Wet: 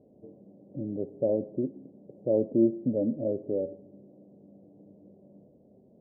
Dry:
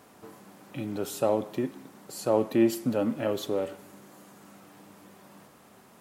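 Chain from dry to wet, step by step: elliptic low-pass 590 Hz, stop band 60 dB

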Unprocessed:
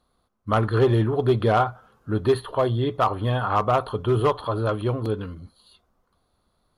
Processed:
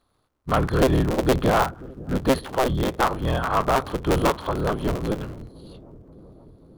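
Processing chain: cycle switcher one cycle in 3, inverted; on a send: feedback echo behind a low-pass 534 ms, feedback 70%, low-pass 410 Hz, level -18.5 dB

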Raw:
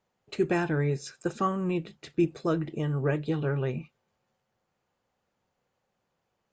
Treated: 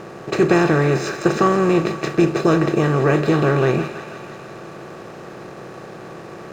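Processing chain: spectral levelling over time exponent 0.4; hysteresis with a dead band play -46.5 dBFS; on a send: thinning echo 163 ms, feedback 74%, high-pass 530 Hz, level -10.5 dB; on the sum: trim +7 dB

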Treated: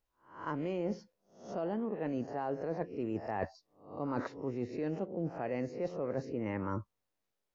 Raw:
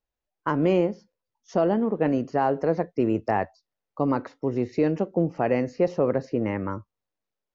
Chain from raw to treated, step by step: reverse spectral sustain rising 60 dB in 0.33 s; reverse; compression 12:1, threshold -32 dBFS, peak gain reduction 16.5 dB; reverse

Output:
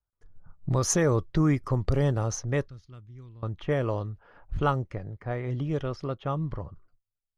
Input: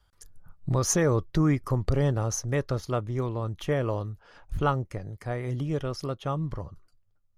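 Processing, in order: gate with hold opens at -50 dBFS; level-controlled noise filter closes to 1.3 kHz, open at -20 dBFS; 2.68–3.43 s: amplifier tone stack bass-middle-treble 6-0-2

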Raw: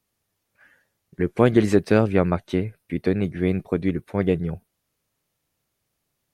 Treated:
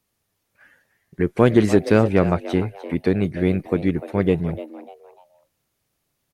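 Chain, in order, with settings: in parallel at -10 dB: overload inside the chain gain 12 dB; on the sum: frequency-shifting echo 298 ms, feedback 32%, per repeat +150 Hz, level -15 dB

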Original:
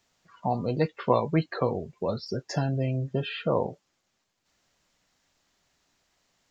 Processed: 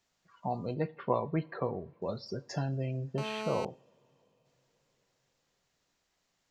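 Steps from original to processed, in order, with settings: 0.74–2.02 s: low-pass 2.4 kHz 12 dB/octave; reverberation, pre-delay 3 ms, DRR 15 dB; 3.18–3.65 s: mobile phone buzz -31 dBFS; trim -7 dB

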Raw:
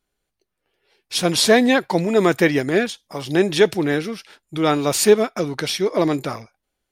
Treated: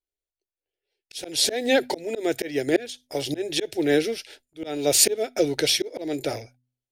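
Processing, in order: short-mantissa float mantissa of 6-bit; static phaser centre 460 Hz, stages 4; gate with hold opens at -38 dBFS; slow attack 368 ms; de-hum 124.8 Hz, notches 2; trim +4 dB

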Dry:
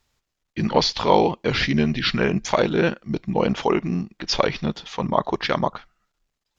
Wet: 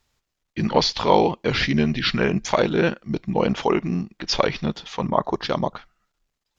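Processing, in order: 5.08–5.74 s: peaking EQ 5.1 kHz -> 1.1 kHz -10.5 dB 0.75 oct

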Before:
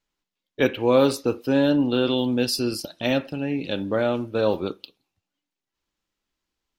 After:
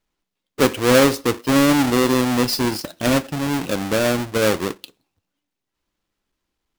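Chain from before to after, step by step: square wave that keeps the level

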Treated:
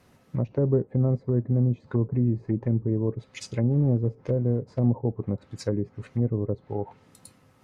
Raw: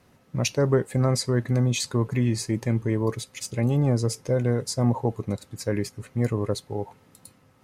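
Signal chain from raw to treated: 3.71–4.87 s: short-mantissa float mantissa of 2-bit; low-pass that closes with the level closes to 460 Hz, closed at -21.5 dBFS

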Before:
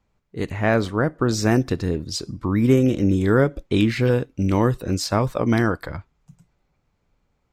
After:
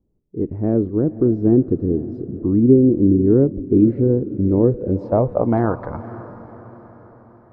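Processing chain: echo that smears into a reverb 528 ms, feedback 50%, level -15.5 dB; low-pass sweep 350 Hz -> 950 Hz, 4.33–5.83 s

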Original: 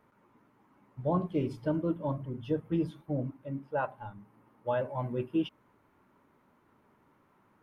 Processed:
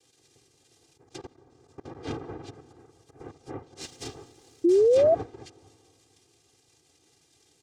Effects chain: slow attack 320 ms; static phaser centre 2.6 kHz, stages 8; 2.67–3.20 s: compression 6:1, threshold -55 dBFS, peak gain reduction 12.5 dB; noise-vocoded speech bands 2; low-pass that closes with the level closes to 2.4 kHz, closed at -36 dBFS; comb 2.5 ms, depth 88%; plate-style reverb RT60 2.5 s, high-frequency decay 0.8×, pre-delay 115 ms, DRR 19.5 dB; 1.04–1.95 s: level held to a coarse grid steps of 20 dB; 3.81–4.70 s: waveshaping leveller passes 1; peaking EQ 900 Hz -14 dB 2.4 oct; bucket-brigade echo 226 ms, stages 2048, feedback 47%, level -18.5 dB; 4.64–5.15 s: painted sound rise 330–690 Hz -26 dBFS; trim +7.5 dB

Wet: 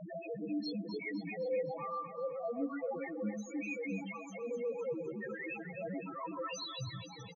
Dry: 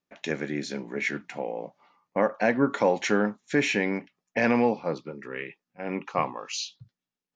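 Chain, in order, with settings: jump at every zero crossing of -27 dBFS; reverb removal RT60 1.7 s; Chebyshev band-pass 100–7100 Hz, order 3; tone controls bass -6 dB, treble -3 dB; comb 6.1 ms, depth 52%; reverse; compression 16:1, threshold -30 dBFS, peak gain reduction 15 dB; reverse; valve stage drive 30 dB, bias 0.35; in parallel at -3.5 dB: one-sided clip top -50 dBFS; on the sum: loudest bins only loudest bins 1; echo whose repeats swap between lows and highs 128 ms, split 920 Hz, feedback 74%, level -5.5 dB; trim +3.5 dB

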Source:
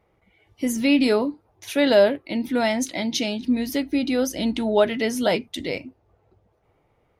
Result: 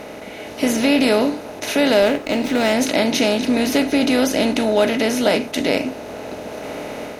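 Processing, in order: spectral levelling over time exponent 0.4; level rider gain up to 5 dB; 2.02–2.73 s: sliding maximum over 3 samples; trim -2 dB

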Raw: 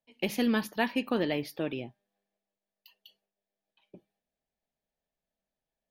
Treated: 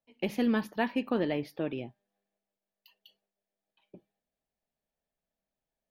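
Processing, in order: treble shelf 2.9 kHz -10.5 dB, from 1.78 s -5 dB

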